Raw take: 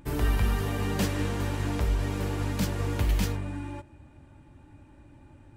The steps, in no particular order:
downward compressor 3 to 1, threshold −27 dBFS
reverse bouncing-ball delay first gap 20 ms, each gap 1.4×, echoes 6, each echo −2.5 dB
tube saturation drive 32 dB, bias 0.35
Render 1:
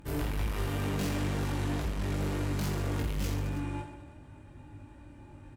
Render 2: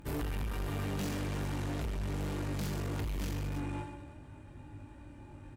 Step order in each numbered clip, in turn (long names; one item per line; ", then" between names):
tube saturation, then reverse bouncing-ball delay, then downward compressor
reverse bouncing-ball delay, then downward compressor, then tube saturation